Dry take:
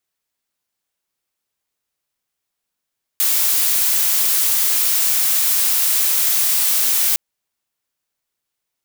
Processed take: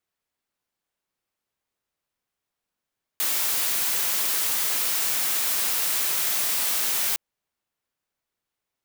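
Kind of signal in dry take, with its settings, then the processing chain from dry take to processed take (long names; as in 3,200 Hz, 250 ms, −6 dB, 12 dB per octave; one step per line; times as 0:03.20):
noise blue, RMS −16.5 dBFS 3.96 s
high-shelf EQ 3,100 Hz −8.5 dB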